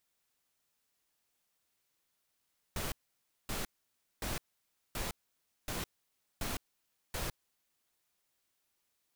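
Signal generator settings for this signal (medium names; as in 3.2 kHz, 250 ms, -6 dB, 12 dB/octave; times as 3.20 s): noise bursts pink, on 0.16 s, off 0.57 s, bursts 7, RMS -37 dBFS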